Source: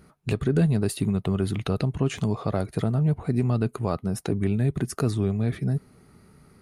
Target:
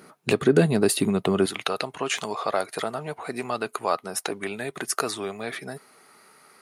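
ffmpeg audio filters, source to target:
-af "asetnsamples=n=441:p=0,asendcmd='1.46 highpass f 730',highpass=300,volume=9dB"

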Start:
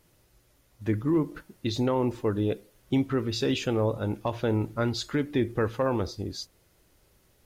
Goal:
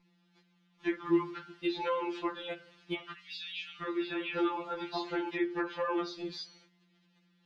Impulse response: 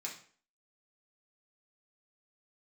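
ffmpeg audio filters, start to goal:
-filter_complex "[0:a]bandreject=f=154.2:t=h:w=4,bandreject=f=308.4:t=h:w=4,bandreject=f=462.6:t=h:w=4,bandreject=f=616.8:t=h:w=4,bandreject=f=771:t=h:w=4,bandreject=f=925.2:t=h:w=4,bandreject=f=1.0794k:t=h:w=4,bandreject=f=1.2336k:t=h:w=4,bandreject=f=1.3878k:t=h:w=4,bandreject=f=1.542k:t=h:w=4,bandreject=f=1.6962k:t=h:w=4,bandreject=f=1.8504k:t=h:w=4,bandreject=f=2.0046k:t=h:w=4,bandreject=f=2.1588k:t=h:w=4,bandreject=f=2.313k:t=h:w=4,bandreject=f=2.4672k:t=h:w=4,bandreject=f=2.6214k:t=h:w=4,bandreject=f=2.7756k:t=h:w=4,bandreject=f=2.9298k:t=h:w=4,bandreject=f=3.084k:t=h:w=4,bandreject=f=3.2382k:t=h:w=4,bandreject=f=3.3924k:t=h:w=4,bandreject=f=3.5466k:t=h:w=4,bandreject=f=3.7008k:t=h:w=4,bandreject=f=3.855k:t=h:w=4,bandreject=f=4.0092k:t=h:w=4,bandreject=f=4.1634k:t=h:w=4,bandreject=f=4.3176k:t=h:w=4,bandreject=f=4.4718k:t=h:w=4,bandreject=f=4.626k:t=h:w=4,bandreject=f=4.7802k:t=h:w=4,bandreject=f=4.9344k:t=h:w=4,bandreject=f=5.0886k:t=h:w=4,bandreject=f=5.2428k:t=h:w=4,bandreject=f=5.397k:t=h:w=4,bandreject=f=5.5512k:t=h:w=4,bandreject=f=5.7054k:t=h:w=4,bandreject=f=5.8596k:t=h:w=4,agate=range=-13dB:threshold=-60dB:ratio=16:detection=peak,lowpass=f=3.6k:w=0.5412,lowpass=f=3.6k:w=1.3066,asettb=1/sr,asplit=3[a][b][c];[a]atrim=end=3.124[d];[b]atrim=start=3.12:end=5.29,asetpts=PTS-STARTPTS,afade=t=in:d=0.004:c=qsin,afade=t=out:st=2.166:d=0.004:c=qsin,acrossover=split=2600[e][f];[e]adelay=700[g];[g][f]amix=inputs=2:normalize=0,atrim=end_sample=95697[h];[c]atrim=start=5.286[i];[d][h]acrossfade=d=0.004:c1=hsin:c2=qsin[j];[j][i]acrossfade=d=0.004:c1=qsin:c2=hsin,acrossover=split=2700[k][l];[l]acompressor=threshold=-51dB:ratio=4:attack=1:release=60[m];[k][m]amix=inputs=2:normalize=0,highpass=51,lowshelf=f=690:t=q:w=1.5:g=-6.5,acrossover=split=760|2000[n][o][p];[n]acompressor=threshold=-41dB:ratio=4[q];[o]acompressor=threshold=-43dB:ratio=4[r];[p]acompressor=threshold=-56dB:ratio=4[s];[q][r][s]amix=inputs=3:normalize=0,crystalizer=i=6.5:c=0,aeval=exprs='val(0)+0.000447*(sin(2*PI*60*n/s)+sin(2*PI*2*60*n/s)/2+sin(2*PI*3*60*n/s)/3+sin(2*PI*4*60*n/s)/4+sin(2*PI*5*60*n/s)/5)':c=same,equalizer=f=380:t=o:w=0.47:g=12,afftfilt=real='re*2.83*eq(mod(b,8),0)':imag='im*2.83*eq(mod(b,8),0)':win_size=2048:overlap=0.75,volume=3dB"

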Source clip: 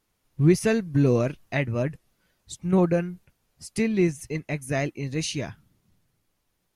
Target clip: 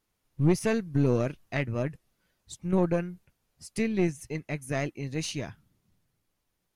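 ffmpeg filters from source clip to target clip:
-af "aeval=exprs='(tanh(4.47*val(0)+0.55)-tanh(0.55))/4.47':c=same,volume=-2dB"

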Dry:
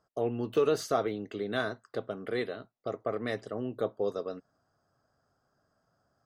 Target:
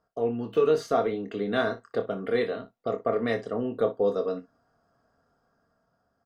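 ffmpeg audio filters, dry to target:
-af "highshelf=f=5k:g=-11,aecho=1:1:4.3:0.38,dynaudnorm=f=420:g=5:m=5dB,aecho=1:1:26|60:0.398|0.168"

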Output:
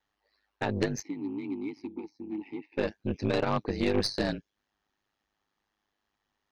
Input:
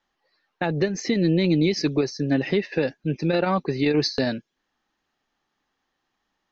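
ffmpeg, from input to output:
-filter_complex "[0:a]aeval=exprs='val(0)*sin(2*PI*51*n/s)':c=same,aeval=exprs='0.299*(cos(1*acos(clip(val(0)/0.299,-1,1)))-cos(1*PI/2))+0.0841*(cos(3*acos(clip(val(0)/0.299,-1,1)))-cos(3*PI/2))+0.0531*(cos(5*acos(clip(val(0)/0.299,-1,1)))-cos(5*PI/2))+0.0168*(cos(6*acos(clip(val(0)/0.299,-1,1)))-cos(6*PI/2))+0.0119*(cos(7*acos(clip(val(0)/0.299,-1,1)))-cos(7*PI/2))':c=same,asplit=3[a][b][c];[a]afade=t=out:st=1.01:d=0.02[d];[b]asplit=3[e][f][g];[e]bandpass=f=300:t=q:w=8,volume=0dB[h];[f]bandpass=f=870:t=q:w=8,volume=-6dB[i];[g]bandpass=f=2.24k:t=q:w=8,volume=-9dB[j];[h][i][j]amix=inputs=3:normalize=0,afade=t=in:st=1.01:d=0.02,afade=t=out:st=2.77:d=0.02[k];[c]afade=t=in:st=2.77:d=0.02[l];[d][k][l]amix=inputs=3:normalize=0"

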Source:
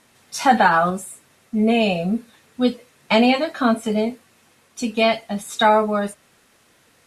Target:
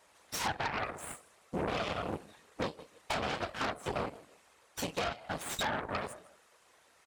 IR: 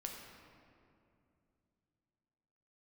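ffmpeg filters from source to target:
-af "aecho=1:1:156|312:0.075|0.0187,afftfilt=real='hypot(re,im)*cos(2*PI*random(0))':imag='hypot(re,im)*sin(2*PI*random(1))':win_size=512:overlap=0.75,equalizer=f=125:t=o:w=1:g=-10,equalizer=f=250:t=o:w=1:g=-8,equalizer=f=500:t=o:w=1:g=4,equalizer=f=1k:t=o:w=1:g=5,equalizer=f=8k:t=o:w=1:g=5,acompressor=threshold=-31dB:ratio=16,aeval=exprs='0.0794*(cos(1*acos(clip(val(0)/0.0794,-1,1)))-cos(1*PI/2))+0.0316*(cos(6*acos(clip(val(0)/0.0794,-1,1)))-cos(6*PI/2))':c=same,highpass=57,highshelf=f=8.1k:g=-7.5,volume=-2.5dB"

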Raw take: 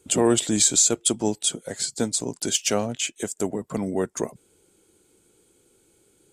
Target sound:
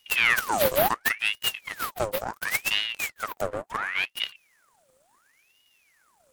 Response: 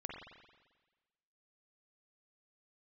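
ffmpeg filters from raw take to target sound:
-af "aeval=exprs='abs(val(0))':c=same,aeval=exprs='val(0)*sin(2*PI*1700*n/s+1700*0.7/0.71*sin(2*PI*0.71*n/s))':c=same"

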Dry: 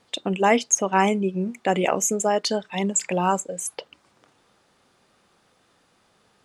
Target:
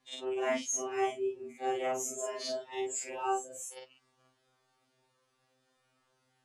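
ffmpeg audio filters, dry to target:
-af "afftfilt=real='re':imag='-im':win_size=4096:overlap=0.75,afftfilt=real='re*2.45*eq(mod(b,6),0)':imag='im*2.45*eq(mod(b,6),0)':win_size=2048:overlap=0.75,volume=-5.5dB"

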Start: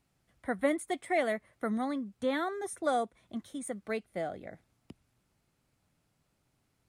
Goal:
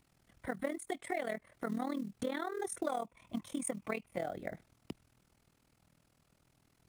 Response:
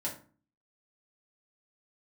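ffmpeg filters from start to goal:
-filter_complex "[0:a]asettb=1/sr,asplit=3[a][b][c];[a]atrim=end=2.894[d];[b]atrim=start=2.89:end=4.18,asetpts=PTS-STARTPTS,afade=t=in:d=0.004:c=qsin,afade=t=out:st=1.286:d=0.004:c=qsin,equalizer=f=400:t=o:w=0.33:g=-6,equalizer=f=1k:t=o:w=0.33:g=9,equalizer=f=1.6k:t=o:w=0.33:g=-6,equalizer=f=2.5k:t=o:w=0.33:g=8,equalizer=f=4k:t=o:w=0.33:g=-5[e];[c]atrim=start=4.176[f];[d][e]acrossfade=d=0.004:c1=hsin:c2=qsin[g];[g][f]acrossfade=d=0.004:c1=qsin:c2=hsin,acompressor=threshold=-39dB:ratio=6,tremolo=f=40:d=0.857,acrusher=bits=7:mode=log:mix=0:aa=0.000001,volume=8dB"

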